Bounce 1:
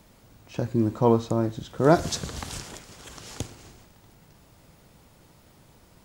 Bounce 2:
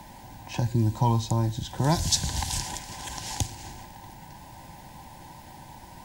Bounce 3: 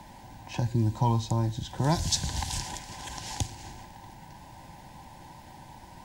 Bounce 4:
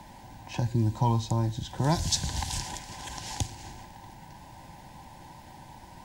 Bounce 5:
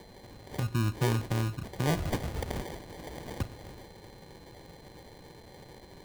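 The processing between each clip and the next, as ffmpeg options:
-filter_complex "[0:a]superequalizer=7b=0.398:9b=3.55:10b=0.355:11b=1.41,acrossover=split=130|3000[a][b][c];[b]acompressor=threshold=-49dB:ratio=2[d];[a][d][c]amix=inputs=3:normalize=0,volume=8dB"
-af "highshelf=f=11k:g=-9,volume=-2dB"
-af anull
-af "acrusher=samples=33:mix=1:aa=0.000001,aeval=exprs='val(0)+0.00112*sin(2*PI*4100*n/s)':c=same,volume=-3dB"

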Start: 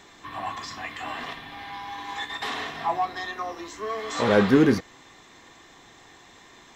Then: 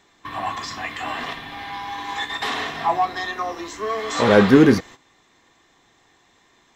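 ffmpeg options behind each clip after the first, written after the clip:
-af "agate=range=-13dB:threshold=-43dB:ratio=16:detection=peak,volume=5.5dB"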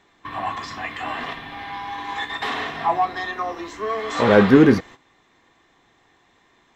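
-af "bass=f=250:g=0,treble=f=4k:g=-8"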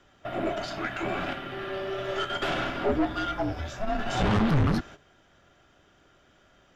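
-af "afreqshift=-420,aeval=exprs='(tanh(10*val(0)+0.35)-tanh(0.35))/10':c=same"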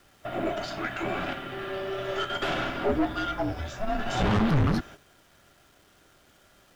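-af "acrusher=bits=9:mix=0:aa=0.000001"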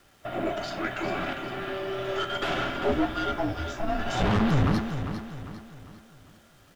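-af "aecho=1:1:400|800|1200|1600|2000:0.355|0.149|0.0626|0.0263|0.011"

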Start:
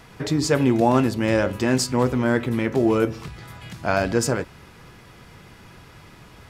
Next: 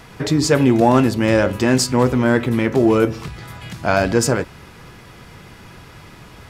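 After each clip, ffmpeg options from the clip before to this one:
-af "acontrast=31"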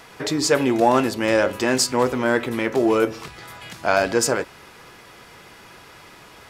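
-af "bass=f=250:g=-13,treble=f=4k:g=1,volume=-1dB"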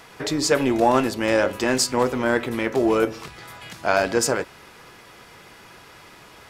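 -af "tremolo=f=270:d=0.261"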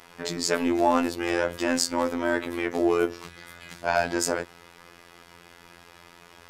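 -af "afftfilt=real='hypot(re,im)*cos(PI*b)':imag='0':win_size=2048:overlap=0.75,volume=-1dB"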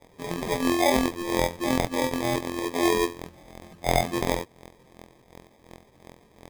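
-af "acrusher=samples=31:mix=1:aa=0.000001"

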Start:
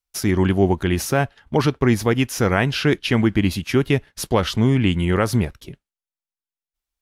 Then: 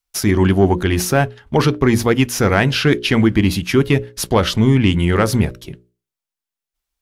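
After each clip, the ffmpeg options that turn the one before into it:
-af "acontrast=34,bandreject=f=60:t=h:w=6,bandreject=f=120:t=h:w=6,bandreject=f=180:t=h:w=6,bandreject=f=240:t=h:w=6,bandreject=f=300:t=h:w=6,bandreject=f=360:t=h:w=6,bandreject=f=420:t=h:w=6,bandreject=f=480:t=h:w=6,bandreject=f=540:t=h:w=6,bandreject=f=600:t=h:w=6"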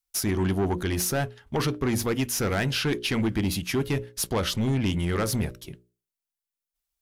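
-af "highshelf=f=6k:g=8.5,asoftclip=type=tanh:threshold=-10.5dB,volume=-8.5dB"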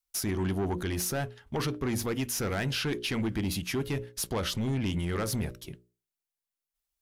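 -af "alimiter=limit=-22.5dB:level=0:latency=1:release=66,volume=-2dB"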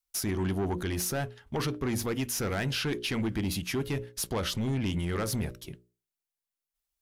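-af anull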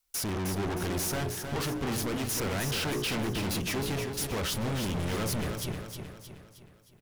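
-filter_complex "[0:a]asoftclip=type=hard:threshold=-39.5dB,asplit=2[a][b];[b]aecho=0:1:312|624|936|1248|1560|1872:0.473|0.227|0.109|0.0523|0.0251|0.0121[c];[a][c]amix=inputs=2:normalize=0,volume=8.5dB"

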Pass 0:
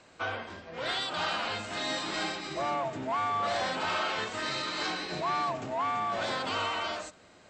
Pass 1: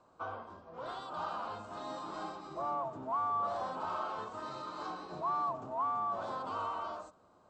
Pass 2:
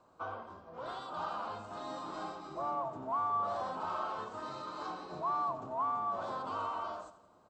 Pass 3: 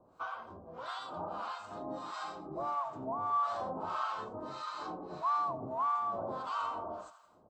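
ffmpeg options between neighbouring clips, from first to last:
-af "highshelf=f=1.5k:t=q:w=3:g=-9.5,volume=-8.5dB"
-af "aecho=1:1:87|174|261|348|435:0.178|0.0907|0.0463|0.0236|0.012"
-filter_complex "[0:a]acrossover=split=830[a][b];[a]aeval=exprs='val(0)*(1-1/2+1/2*cos(2*PI*1.6*n/s))':c=same[c];[b]aeval=exprs='val(0)*(1-1/2-1/2*cos(2*PI*1.6*n/s))':c=same[d];[c][d]amix=inputs=2:normalize=0,volume=5.5dB"

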